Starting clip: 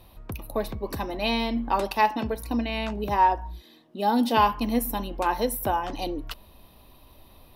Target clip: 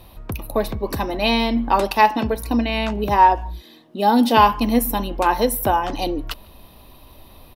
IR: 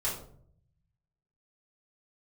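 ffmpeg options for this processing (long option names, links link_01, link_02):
-filter_complex "[0:a]asplit=2[link_01][link_02];[link_02]adelay=150,highpass=300,lowpass=3400,asoftclip=type=hard:threshold=-17.5dB,volume=-29dB[link_03];[link_01][link_03]amix=inputs=2:normalize=0,volume=7dB"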